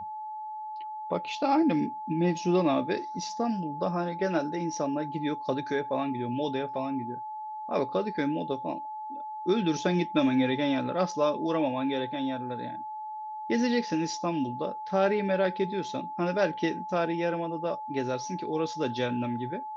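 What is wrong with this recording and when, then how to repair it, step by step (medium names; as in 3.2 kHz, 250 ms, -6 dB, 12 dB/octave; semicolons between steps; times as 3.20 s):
whine 860 Hz -35 dBFS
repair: band-stop 860 Hz, Q 30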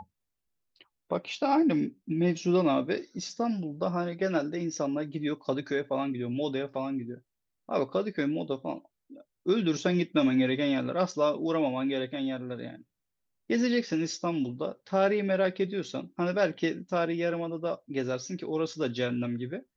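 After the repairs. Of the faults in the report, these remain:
nothing left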